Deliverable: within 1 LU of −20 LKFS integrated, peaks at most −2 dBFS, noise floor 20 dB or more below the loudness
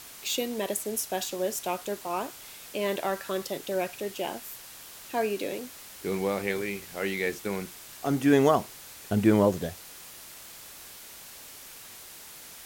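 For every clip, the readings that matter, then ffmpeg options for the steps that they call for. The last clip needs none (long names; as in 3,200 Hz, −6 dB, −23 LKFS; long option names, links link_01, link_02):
background noise floor −47 dBFS; target noise floor −49 dBFS; integrated loudness −29.0 LKFS; sample peak −9.5 dBFS; target loudness −20.0 LKFS
→ -af "afftdn=noise_reduction=6:noise_floor=-47"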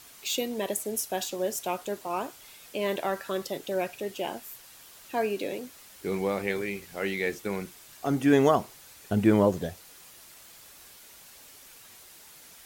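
background noise floor −51 dBFS; integrated loudness −29.0 LKFS; sample peak −9.5 dBFS; target loudness −20.0 LKFS
→ -af "volume=9dB,alimiter=limit=-2dB:level=0:latency=1"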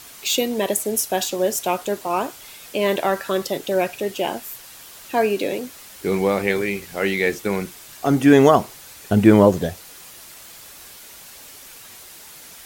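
integrated loudness −20.5 LKFS; sample peak −2.0 dBFS; background noise floor −42 dBFS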